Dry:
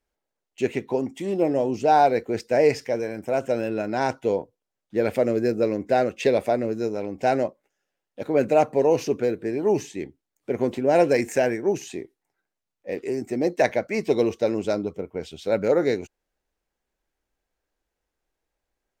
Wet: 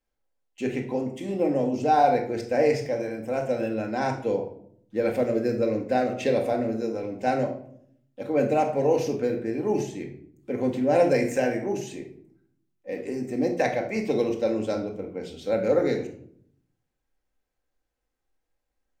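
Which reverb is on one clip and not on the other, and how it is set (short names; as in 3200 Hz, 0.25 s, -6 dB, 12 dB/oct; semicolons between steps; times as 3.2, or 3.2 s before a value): shoebox room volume 1000 m³, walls furnished, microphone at 2.1 m; gain -5 dB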